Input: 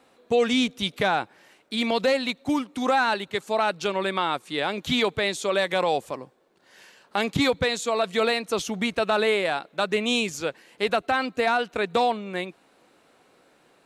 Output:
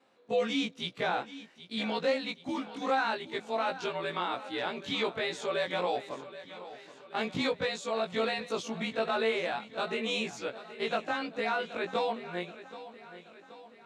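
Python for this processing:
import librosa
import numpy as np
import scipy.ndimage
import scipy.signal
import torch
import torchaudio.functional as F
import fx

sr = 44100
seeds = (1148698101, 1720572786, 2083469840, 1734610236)

y = fx.frame_reverse(x, sr, frame_ms=45.0)
y = fx.bandpass_edges(y, sr, low_hz=140.0, high_hz=6300.0)
y = fx.echo_feedback(y, sr, ms=777, feedback_pct=53, wet_db=-15)
y = y * 10.0 ** (-4.5 / 20.0)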